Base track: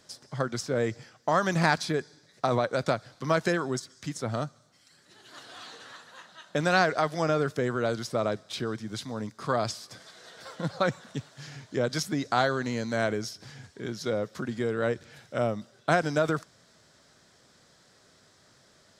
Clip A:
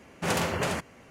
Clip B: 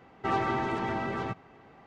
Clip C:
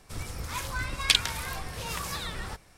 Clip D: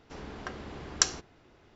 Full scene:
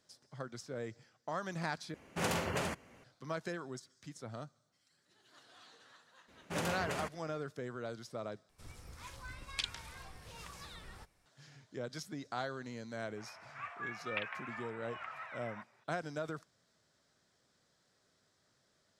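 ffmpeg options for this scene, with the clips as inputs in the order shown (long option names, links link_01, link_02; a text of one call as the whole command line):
ffmpeg -i bed.wav -i cue0.wav -i cue1.wav -i cue2.wav -filter_complex "[1:a]asplit=2[link_01][link_02];[3:a]asplit=2[link_03][link_04];[0:a]volume=-14.5dB[link_05];[link_03]acrossover=split=9600[link_06][link_07];[link_07]acompressor=threshold=-54dB:ratio=4:attack=1:release=60[link_08];[link_06][link_08]amix=inputs=2:normalize=0[link_09];[link_04]highpass=frequency=490:width_type=q:width=0.5412,highpass=frequency=490:width_type=q:width=1.307,lowpass=frequency=2300:width_type=q:width=0.5176,lowpass=frequency=2300:width_type=q:width=0.7071,lowpass=frequency=2300:width_type=q:width=1.932,afreqshift=160[link_10];[link_05]asplit=3[link_11][link_12][link_13];[link_11]atrim=end=1.944[link_14];[link_01]atrim=end=1.1,asetpts=PTS-STARTPTS,volume=-7dB[link_15];[link_12]atrim=start=3.036:end=8.494[link_16];[link_09]atrim=end=2.77,asetpts=PTS-STARTPTS,volume=-15.5dB[link_17];[link_13]atrim=start=11.256[link_18];[link_02]atrim=end=1.1,asetpts=PTS-STARTPTS,volume=-10.5dB,afade=type=in:duration=0.004:curve=hsin,afade=type=out:start_time=1.096:duration=0.004:curve=hsin,adelay=6280[link_19];[link_10]atrim=end=2.77,asetpts=PTS-STARTPTS,volume=-7.5dB,afade=type=in:duration=0.004:curve=hsin,afade=type=out:start_time=2.766:duration=0.004:curve=hsin,adelay=13070[link_20];[link_14][link_15]acrossfade=duration=0.004:curve1=hsin:curve2=hsin[link_21];[link_21][link_16]acrossfade=duration=0.004:curve1=hsin:curve2=hsin[link_22];[link_22][link_17]acrossfade=duration=0.004:curve1=hsin:curve2=hsin[link_23];[link_23][link_18]acrossfade=duration=0.004:curve1=hsin:curve2=hsin[link_24];[link_24][link_19][link_20]amix=inputs=3:normalize=0" out.wav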